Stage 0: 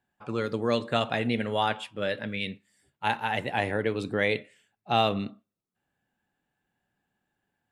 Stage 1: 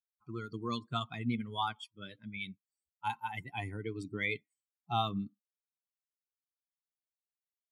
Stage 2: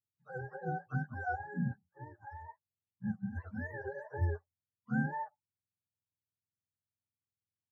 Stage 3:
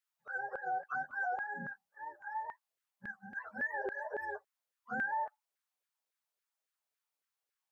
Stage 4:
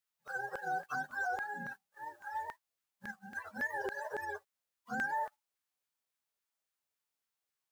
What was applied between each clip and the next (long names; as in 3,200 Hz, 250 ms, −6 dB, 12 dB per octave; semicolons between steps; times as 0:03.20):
spectral dynamics exaggerated over time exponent 2; comb filter 0.9 ms, depth 92%; level −6.5 dB
frequency axis turned over on the octave scale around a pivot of 420 Hz
auto-filter high-pass saw down 3.6 Hz 450–1,700 Hz; brickwall limiter −33.5 dBFS, peak gain reduction 13.5 dB; level +4.5 dB
spectral envelope flattened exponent 0.6